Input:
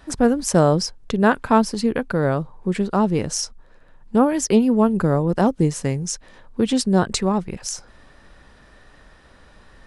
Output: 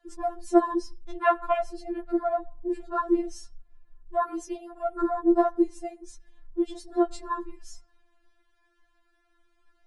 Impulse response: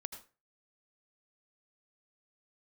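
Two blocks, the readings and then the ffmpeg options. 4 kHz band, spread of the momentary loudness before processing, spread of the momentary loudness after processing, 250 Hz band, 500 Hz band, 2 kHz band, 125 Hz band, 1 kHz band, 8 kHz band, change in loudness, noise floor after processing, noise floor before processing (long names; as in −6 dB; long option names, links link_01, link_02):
below −15 dB, 11 LU, 14 LU, −9.0 dB, −6.5 dB, −10.0 dB, below −35 dB, −4.5 dB, −21.5 dB, −7.5 dB, −69 dBFS, −51 dBFS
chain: -filter_complex "[0:a]afwtdn=0.0708,asplit=2[link_01][link_02];[link_02]highshelf=frequency=6000:gain=-8.5[link_03];[1:a]atrim=start_sample=2205,afade=type=out:start_time=0.32:duration=0.01,atrim=end_sample=14553,lowpass=5700[link_04];[link_03][link_04]afir=irnorm=-1:irlink=0,volume=-13dB[link_05];[link_01][link_05]amix=inputs=2:normalize=0,afftfilt=real='re*4*eq(mod(b,16),0)':imag='im*4*eq(mod(b,16),0)':win_size=2048:overlap=0.75,volume=-1.5dB"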